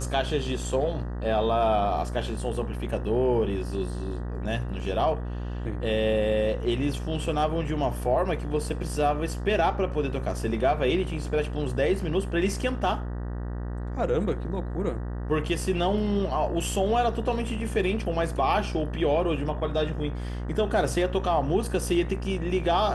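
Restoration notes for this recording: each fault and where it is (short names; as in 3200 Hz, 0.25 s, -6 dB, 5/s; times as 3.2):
buzz 60 Hz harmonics 32 -32 dBFS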